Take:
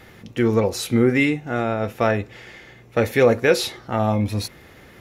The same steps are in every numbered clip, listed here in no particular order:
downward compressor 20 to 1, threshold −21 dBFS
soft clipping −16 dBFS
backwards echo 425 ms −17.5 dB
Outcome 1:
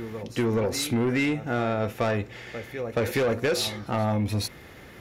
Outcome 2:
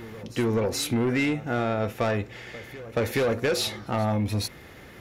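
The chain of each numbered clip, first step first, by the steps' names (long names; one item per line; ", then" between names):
backwards echo, then soft clipping, then downward compressor
soft clipping, then downward compressor, then backwards echo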